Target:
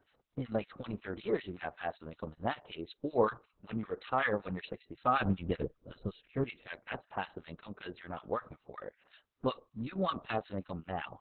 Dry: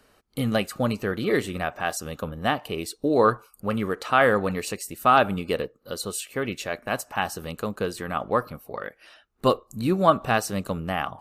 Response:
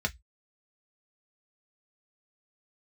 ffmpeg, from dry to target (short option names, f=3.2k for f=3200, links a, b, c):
-filter_complex "[0:a]acrossover=split=1300[a][b];[a]aeval=exprs='val(0)*(1-1/2+1/2*cos(2*PI*5.3*n/s))':c=same[c];[b]aeval=exprs='val(0)*(1-1/2-1/2*cos(2*PI*5.3*n/s))':c=same[d];[c][d]amix=inputs=2:normalize=0,asettb=1/sr,asplit=3[e][f][g];[e]atrim=end=5.174[h];[f]atrim=start=5.17:end=6.44,asetpts=PTS-STARTPTS,afade=t=in:d=0.004:c=qsin,afade=t=out:st=1.266:d=0.004:c=qsin,aemphasis=mode=reproduction:type=riaa[i];[g]atrim=start=6.436[j];[h][i]acrossfade=d=0.004:c1=hsin:c2=qsin[k];[k][j]acrossfade=d=0.004:c1=qsin:c2=hsin,volume=-6dB" -ar 48000 -c:a libopus -b:a 6k